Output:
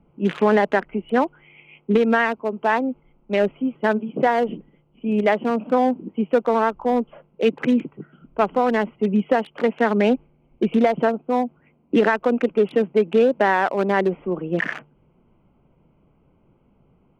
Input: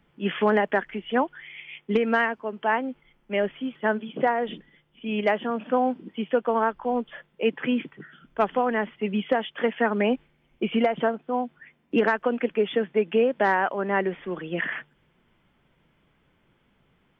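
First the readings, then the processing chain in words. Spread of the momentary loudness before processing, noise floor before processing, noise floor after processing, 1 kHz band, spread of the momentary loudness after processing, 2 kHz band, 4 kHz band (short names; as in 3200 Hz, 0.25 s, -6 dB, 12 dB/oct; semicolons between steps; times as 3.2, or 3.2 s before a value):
10 LU, -67 dBFS, -61 dBFS, +4.0 dB, 8 LU, +2.5 dB, n/a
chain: Wiener smoothing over 25 samples; in parallel at +3 dB: limiter -19 dBFS, peak gain reduction 8.5 dB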